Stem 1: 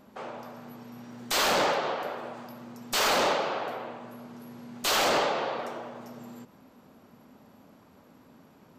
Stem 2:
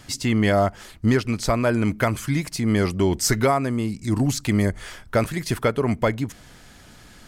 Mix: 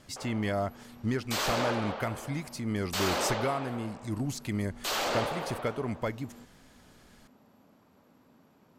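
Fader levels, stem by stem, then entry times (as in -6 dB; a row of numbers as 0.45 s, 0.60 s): -6.0 dB, -11.5 dB; 0.00 s, 0.00 s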